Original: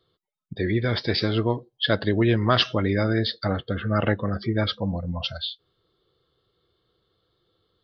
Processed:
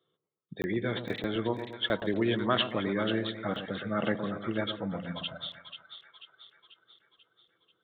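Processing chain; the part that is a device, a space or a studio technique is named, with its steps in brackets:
call with lost packets (high-pass filter 140 Hz 24 dB per octave; downsampling to 8,000 Hz; dropped packets)
echo with a time of its own for lows and highs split 1,100 Hz, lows 118 ms, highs 489 ms, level −8.5 dB
level −6.5 dB

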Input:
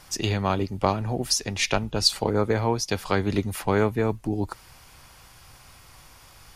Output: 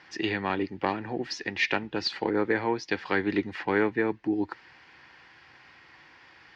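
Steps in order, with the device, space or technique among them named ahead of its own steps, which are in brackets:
overdrive pedal into a guitar cabinet (mid-hump overdrive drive 9 dB, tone 3,100 Hz, clips at −5 dBFS; loudspeaker in its box 110–4,400 Hz, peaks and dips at 110 Hz −4 dB, 320 Hz +8 dB, 630 Hz −8 dB, 1,200 Hz −7 dB, 1,800 Hz +9 dB, 3,600 Hz −4 dB)
level −3.5 dB

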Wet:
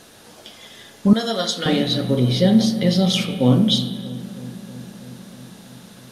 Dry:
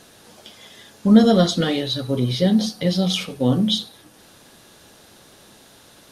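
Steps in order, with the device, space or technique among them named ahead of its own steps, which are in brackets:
dub delay into a spring reverb (feedback echo with a low-pass in the loop 320 ms, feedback 78%, low-pass 1,100 Hz, level −17.5 dB; spring reverb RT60 1.2 s, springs 31/40 ms, chirp 45 ms, DRR 8.5 dB)
0:01.13–0:01.66: high-pass filter 1,400 Hz 6 dB per octave
level +2 dB

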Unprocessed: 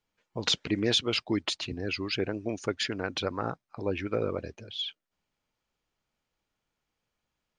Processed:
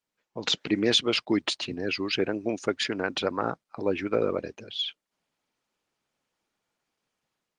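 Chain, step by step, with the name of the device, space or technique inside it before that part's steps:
0:01.25–0:01.87: noise gate −52 dBFS, range −18 dB
video call (high-pass filter 170 Hz 12 dB per octave; automatic gain control gain up to 7 dB; level −2.5 dB; Opus 20 kbit/s 48,000 Hz)

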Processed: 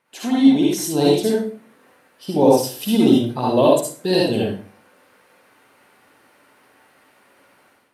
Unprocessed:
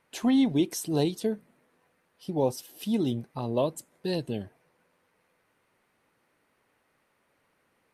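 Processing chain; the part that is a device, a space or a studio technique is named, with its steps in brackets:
far laptop microphone (convolution reverb RT60 0.40 s, pre-delay 51 ms, DRR −4 dB; high-pass filter 170 Hz 6 dB per octave; automatic gain control gain up to 11.5 dB)

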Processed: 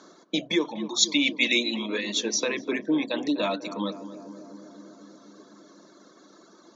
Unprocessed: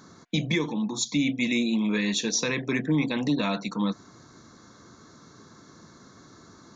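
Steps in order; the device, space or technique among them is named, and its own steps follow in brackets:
mains-hum notches 50/100/150 Hz
reverb reduction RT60 1.5 s
television speaker (loudspeaker in its box 220–7,900 Hz, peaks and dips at 240 Hz −4 dB, 340 Hz +5 dB, 600 Hz +9 dB, 2,100 Hz −3 dB, 3,200 Hz +5 dB)
0:00.65–0:01.86: flat-topped bell 2,800 Hz +8.5 dB 2.7 octaves
feedback echo with a low-pass in the loop 246 ms, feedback 79%, low-pass 1,200 Hz, level −12.5 dB

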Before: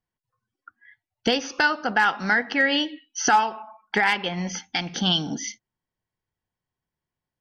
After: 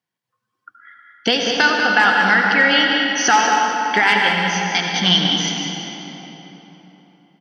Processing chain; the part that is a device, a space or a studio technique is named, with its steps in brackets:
PA in a hall (high-pass filter 130 Hz 24 dB per octave; parametric band 3,000 Hz +5 dB 2.2 octaves; single-tap delay 193 ms −8 dB; convolution reverb RT60 3.8 s, pre-delay 69 ms, DRR 0.5 dB)
level +2 dB

